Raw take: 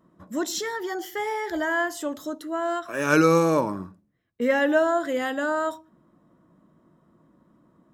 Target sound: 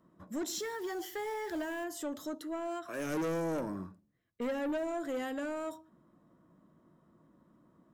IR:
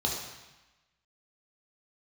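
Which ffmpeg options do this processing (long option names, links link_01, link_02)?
-filter_complex "[0:a]acrossover=split=570|6500[link_01][link_02][link_03];[link_02]acompressor=threshold=-34dB:ratio=6[link_04];[link_01][link_04][link_03]amix=inputs=3:normalize=0,asoftclip=type=tanh:threshold=-25.5dB,asettb=1/sr,asplit=3[link_05][link_06][link_07];[link_05]atrim=end=0.594[link_08];[link_06]atrim=start=0.59:end=1.84,asetpts=PTS-STARTPTS,afade=type=in:duration=0.004:curve=qsin,afade=type=out:start_time=1.246:duration=0.004:curve=qsin,acrusher=bits=7:mix=0:aa=0.5[link_09];[link_07]atrim=start=1.836[link_10];[link_08][link_09]acrossfade=duration=0.004:curve1=hsin:curve2=qsin[link_11];[link_11][link_10]acrossfade=duration=0.004:curve1=qsin:curve2=hsin,volume=-5dB"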